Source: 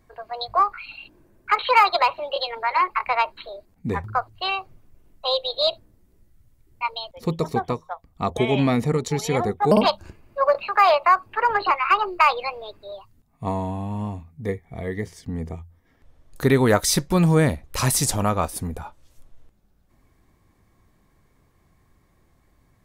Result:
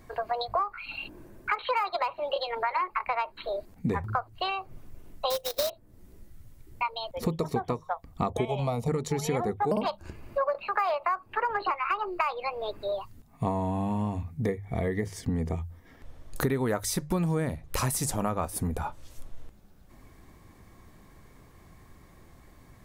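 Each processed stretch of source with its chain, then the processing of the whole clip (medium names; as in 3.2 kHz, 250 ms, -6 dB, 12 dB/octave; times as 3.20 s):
5.30–5.70 s: transient shaper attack +9 dB, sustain -6 dB + sample-rate reducer 9.3 kHz, jitter 20%
8.45–8.88 s: transient shaper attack +3 dB, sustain -5 dB + static phaser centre 720 Hz, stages 4
whole clip: hum notches 50/100/150 Hz; compression 6:1, threshold -34 dBFS; dynamic bell 4.1 kHz, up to -6 dB, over -53 dBFS, Q 0.77; trim +8 dB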